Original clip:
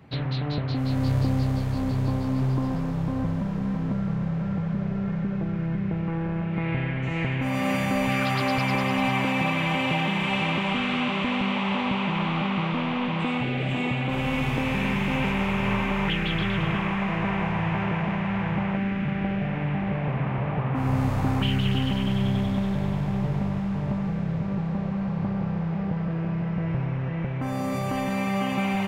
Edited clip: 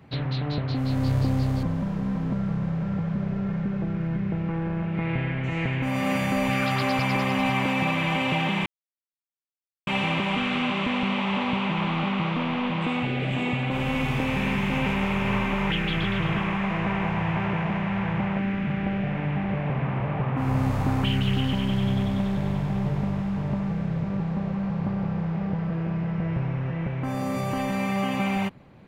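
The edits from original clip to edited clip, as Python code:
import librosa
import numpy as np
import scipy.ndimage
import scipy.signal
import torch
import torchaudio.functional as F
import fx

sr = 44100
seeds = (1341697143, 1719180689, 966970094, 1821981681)

y = fx.edit(x, sr, fx.cut(start_s=1.63, length_s=1.59),
    fx.insert_silence(at_s=10.25, length_s=1.21), tone=tone)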